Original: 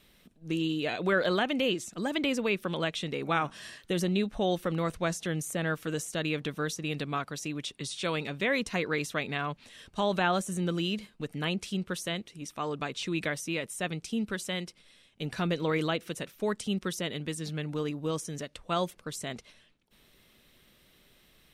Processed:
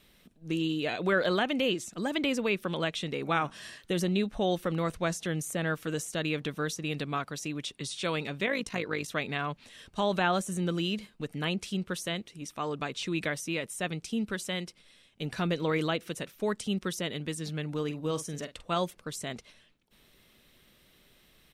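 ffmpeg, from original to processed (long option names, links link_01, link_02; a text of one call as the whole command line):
ffmpeg -i in.wav -filter_complex "[0:a]asettb=1/sr,asplit=3[link_01][link_02][link_03];[link_01]atrim=end=8.464[link_04];[link_02]atrim=start=8.46:end=9.09,asetpts=PTS-STARTPTS,afade=type=in:duration=0.004:curve=qsin,afade=type=out:start_time=0.626:duration=0.004:curve=qsin,tremolo=f=53:d=0.621[link_05];[link_03]atrim=start=9.086[link_06];[link_04][link_05]acrossfade=duration=0.004:curve1=hsin:curve2=qsin[link_07];[link_07][link_06]acrossfade=duration=0.004:curve1=qsin:curve2=hsin,asplit=3[link_08][link_09][link_10];[link_08]afade=type=out:start_time=17.88:duration=0.02[link_11];[link_09]asplit=2[link_12][link_13];[link_13]adelay=46,volume=-12dB[link_14];[link_12][link_14]amix=inputs=2:normalize=0,afade=type=in:start_time=17.88:duration=0.02,afade=type=out:start_time=18.77:duration=0.02[link_15];[link_10]afade=type=in:start_time=18.77:duration=0.02[link_16];[link_11][link_15][link_16]amix=inputs=3:normalize=0" out.wav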